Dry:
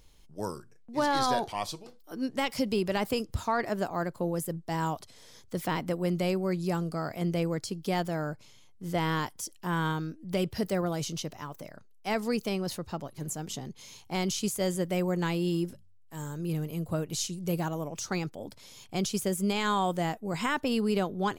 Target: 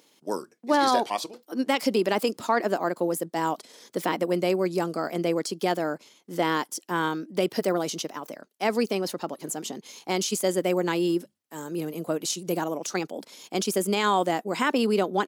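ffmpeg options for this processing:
ffmpeg -i in.wav -af "highpass=frequency=250:width=0.5412,highpass=frequency=250:width=1.3066,lowshelf=frequency=330:gain=5,atempo=1.4,volume=5dB" out.wav

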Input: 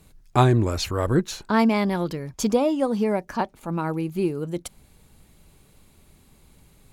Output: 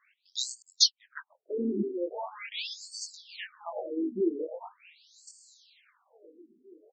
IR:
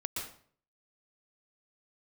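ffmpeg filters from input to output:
-filter_complex "[0:a]asplit=2[link_01][link_02];[link_02]adelay=617,lowpass=frequency=2000:poles=1,volume=-10.5dB,asplit=2[link_03][link_04];[link_04]adelay=617,lowpass=frequency=2000:poles=1,volume=0.54,asplit=2[link_05][link_06];[link_06]adelay=617,lowpass=frequency=2000:poles=1,volume=0.54,asplit=2[link_07][link_08];[link_08]adelay=617,lowpass=frequency=2000:poles=1,volume=0.54,asplit=2[link_09][link_10];[link_10]adelay=617,lowpass=frequency=2000:poles=1,volume=0.54,asplit=2[link_11][link_12];[link_12]adelay=617,lowpass=frequency=2000:poles=1,volume=0.54[link_13];[link_01][link_03][link_05][link_07][link_09][link_11][link_13]amix=inputs=7:normalize=0,flanger=delay=19:depth=4.3:speed=0.99,asoftclip=type=hard:threshold=-13.5dB,crystalizer=i=6:c=0,asettb=1/sr,asplit=3[link_14][link_15][link_16];[link_14]atrim=end=0.624[link_17];[link_15]atrim=start=0.62:end=1.46,asetpts=PTS-STARTPTS,afade=type=in:duration=0.004:curve=qsin,afade=type=out:start_time=0.836:duration=0.004:curve=qsin,agate=range=-36dB:threshold=-19dB:ratio=16:detection=peak[link_18];[link_16]atrim=start=1.456[link_19];[link_17][link_18]acrossfade=duration=0.004:curve1=hsin:curve2=qsin[link_20];[link_20][link_19]acrossfade=duration=0.004:curve1=qsin:curve2=hsin,afftfilt=real='re*between(b*sr/1024,300*pow(6200/300,0.5+0.5*sin(2*PI*0.42*pts/sr))/1.41,300*pow(6200/300,0.5+0.5*sin(2*PI*0.42*pts/sr))*1.41)':imag='im*between(b*sr/1024,300*pow(6200/300,0.5+0.5*sin(2*PI*0.42*pts/sr))/1.41,300*pow(6200/300,0.5+0.5*sin(2*PI*0.42*pts/sr))*1.41)':win_size=1024:overlap=0.75"

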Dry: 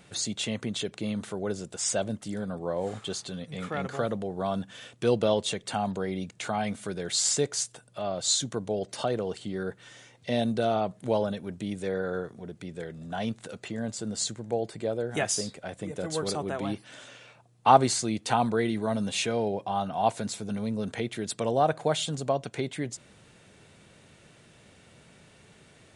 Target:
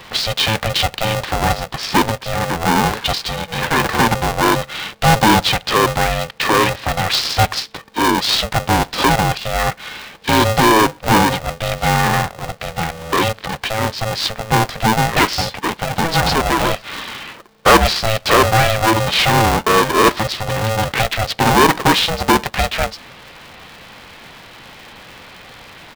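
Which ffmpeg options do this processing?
ffmpeg -i in.wav -filter_complex "[0:a]asplit=2[link_01][link_02];[link_02]highpass=frequency=720:poles=1,volume=25dB,asoftclip=type=tanh:threshold=-4.5dB[link_03];[link_01][link_03]amix=inputs=2:normalize=0,lowpass=frequency=3800:poles=1,volume=-6dB,aresample=11025,aresample=44100,aeval=exprs='val(0)*sgn(sin(2*PI*330*n/s))':channel_layout=same,volume=3dB" out.wav

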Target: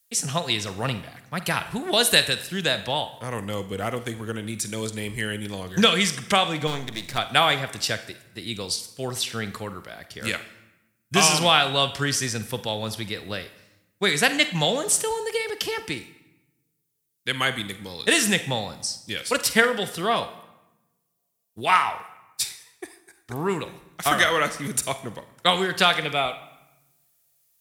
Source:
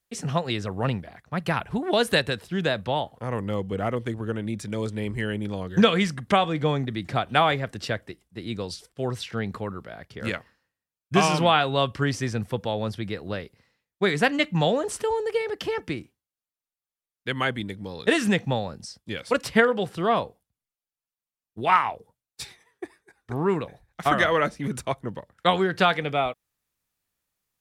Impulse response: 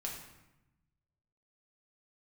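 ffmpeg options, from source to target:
-filter_complex "[0:a]asettb=1/sr,asplit=3[link_01][link_02][link_03];[link_01]atrim=end=6.674[link_04];[link_02]atrim=start=6.67:end=7.18,asetpts=PTS-STARTPTS,afade=type=in:duration=0.004:curve=qsin,afade=type=out:start_time=0.506:duration=0.004:curve=qsin,aeval=exprs='if(lt(val(0),0),0.251*val(0),val(0))':channel_layout=same[link_05];[link_03]atrim=start=7.176[link_06];[link_04][link_05]acrossfade=duration=0.004:curve1=hsin:curve2=qsin[link_07];[link_07][link_06]acrossfade=duration=0.004:curve1=qsin:curve2=hsin,crystalizer=i=6:c=0,asplit=2[link_08][link_09];[1:a]atrim=start_sample=2205,lowshelf=frequency=210:gain=-10.5,adelay=46[link_10];[link_09][link_10]afir=irnorm=-1:irlink=0,volume=-10.5dB[link_11];[link_08][link_11]amix=inputs=2:normalize=0,volume=-3dB"

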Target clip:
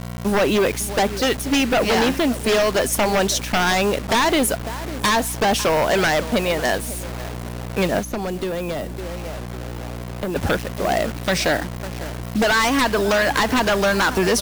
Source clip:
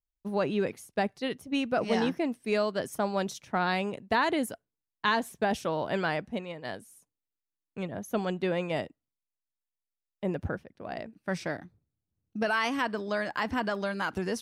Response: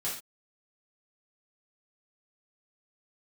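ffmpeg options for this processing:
-filter_complex "[0:a]equalizer=frequency=78:width=0.34:gain=-12.5,acompressor=threshold=-34dB:ratio=3,asplit=2[link_01][link_02];[link_02]adelay=552,lowpass=frequency=950:poles=1,volume=-17dB,asplit=2[link_03][link_04];[link_04]adelay=552,lowpass=frequency=950:poles=1,volume=0.34,asplit=2[link_05][link_06];[link_06]adelay=552,lowpass=frequency=950:poles=1,volume=0.34[link_07];[link_01][link_03][link_05][link_07]amix=inputs=4:normalize=0,aeval=exprs='val(0)+0.00224*(sin(2*PI*60*n/s)+sin(2*PI*2*60*n/s)/2+sin(2*PI*3*60*n/s)/3+sin(2*PI*4*60*n/s)/4+sin(2*PI*5*60*n/s)/5)':channel_layout=same,acrusher=bits=8:mix=0:aa=0.000001,aeval=exprs='0.0944*sin(PI/2*3.98*val(0)/0.0944)':channel_layout=same,asettb=1/sr,asplit=3[link_08][link_09][link_10];[link_08]atrim=end=7.994[link_11];[link_09]atrim=start=7.99:end=10.36,asetpts=PTS-STARTPTS,afade=type=in:duration=0.004:curve=qsin,afade=type=out:start_time=2.366:duration=0.004:curve=qsin,acrossover=split=310|1100|7600[link_12][link_13][link_14][link_15];[link_12]acompressor=threshold=-34dB:ratio=4[link_16];[link_13]acompressor=threshold=-36dB:ratio=4[link_17];[link_14]acompressor=threshold=-45dB:ratio=4[link_18];[link_15]acompressor=threshold=-50dB:ratio=4[link_19];[link_16][link_17][link_18][link_19]amix=inputs=4:normalize=0[link_20];[link_10]atrim=start=10.356[link_21];[link_11][link_20]acrossfade=duration=0.004:curve1=hsin:curve2=qsin[link_22];[link_22][link_21]acrossfade=duration=0.004:curve1=qsin:curve2=hsin,volume=7dB"

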